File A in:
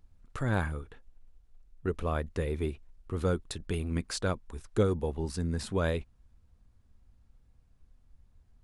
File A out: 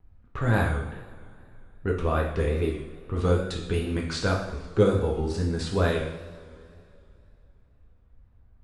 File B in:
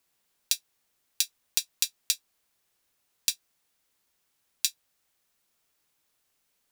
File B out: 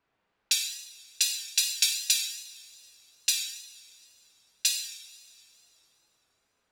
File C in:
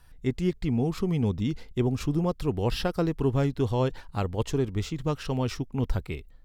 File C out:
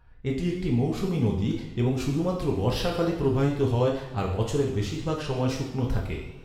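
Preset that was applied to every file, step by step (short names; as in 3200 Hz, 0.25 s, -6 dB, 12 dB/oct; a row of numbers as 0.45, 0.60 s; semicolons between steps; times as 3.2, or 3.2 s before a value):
low-pass opened by the level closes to 1900 Hz, open at -25 dBFS; two-slope reverb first 0.75 s, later 2.9 s, from -18 dB, DRR -1.5 dB; wow and flutter 62 cents; match loudness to -27 LUFS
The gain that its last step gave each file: +3.0, +3.0, -1.5 dB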